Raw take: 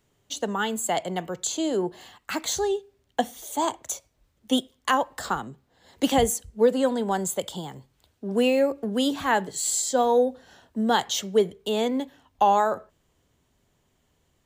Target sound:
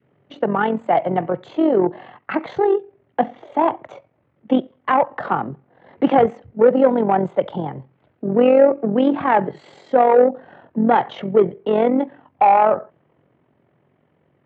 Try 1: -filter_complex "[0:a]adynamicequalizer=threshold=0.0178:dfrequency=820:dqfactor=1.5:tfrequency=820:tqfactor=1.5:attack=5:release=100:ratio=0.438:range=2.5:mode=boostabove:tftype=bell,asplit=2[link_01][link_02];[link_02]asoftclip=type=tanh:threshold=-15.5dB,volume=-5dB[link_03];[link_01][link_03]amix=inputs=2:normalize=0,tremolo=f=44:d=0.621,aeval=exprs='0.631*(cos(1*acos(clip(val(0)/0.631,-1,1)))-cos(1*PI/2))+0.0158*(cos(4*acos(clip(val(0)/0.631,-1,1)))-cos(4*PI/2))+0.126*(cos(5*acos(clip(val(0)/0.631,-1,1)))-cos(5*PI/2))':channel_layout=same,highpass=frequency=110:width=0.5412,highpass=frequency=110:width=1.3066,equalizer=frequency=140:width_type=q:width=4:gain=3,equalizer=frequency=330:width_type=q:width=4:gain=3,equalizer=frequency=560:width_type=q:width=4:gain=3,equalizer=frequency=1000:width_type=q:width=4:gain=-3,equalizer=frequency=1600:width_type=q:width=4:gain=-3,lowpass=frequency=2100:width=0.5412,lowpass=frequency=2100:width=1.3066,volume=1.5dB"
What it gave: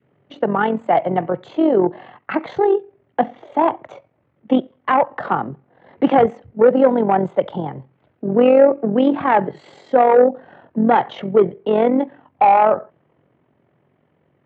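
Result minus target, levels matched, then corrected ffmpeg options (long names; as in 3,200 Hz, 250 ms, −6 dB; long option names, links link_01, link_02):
soft clipping: distortion −8 dB
-filter_complex "[0:a]adynamicequalizer=threshold=0.0178:dfrequency=820:dqfactor=1.5:tfrequency=820:tqfactor=1.5:attack=5:release=100:ratio=0.438:range=2.5:mode=boostabove:tftype=bell,asplit=2[link_01][link_02];[link_02]asoftclip=type=tanh:threshold=-26.5dB,volume=-5dB[link_03];[link_01][link_03]amix=inputs=2:normalize=0,tremolo=f=44:d=0.621,aeval=exprs='0.631*(cos(1*acos(clip(val(0)/0.631,-1,1)))-cos(1*PI/2))+0.0158*(cos(4*acos(clip(val(0)/0.631,-1,1)))-cos(4*PI/2))+0.126*(cos(5*acos(clip(val(0)/0.631,-1,1)))-cos(5*PI/2))':channel_layout=same,highpass=frequency=110:width=0.5412,highpass=frequency=110:width=1.3066,equalizer=frequency=140:width_type=q:width=4:gain=3,equalizer=frequency=330:width_type=q:width=4:gain=3,equalizer=frequency=560:width_type=q:width=4:gain=3,equalizer=frequency=1000:width_type=q:width=4:gain=-3,equalizer=frequency=1600:width_type=q:width=4:gain=-3,lowpass=frequency=2100:width=0.5412,lowpass=frequency=2100:width=1.3066,volume=1.5dB"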